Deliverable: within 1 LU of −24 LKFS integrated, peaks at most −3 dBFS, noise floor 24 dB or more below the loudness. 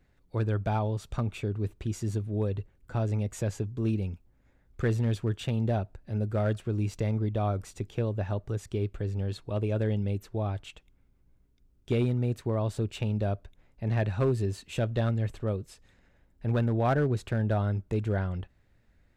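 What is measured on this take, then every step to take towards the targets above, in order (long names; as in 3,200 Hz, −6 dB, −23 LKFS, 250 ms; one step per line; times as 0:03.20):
share of clipped samples 0.4%; peaks flattened at −19.0 dBFS; integrated loudness −30.5 LKFS; sample peak −19.0 dBFS; target loudness −24.0 LKFS
→ clipped peaks rebuilt −19 dBFS
level +6.5 dB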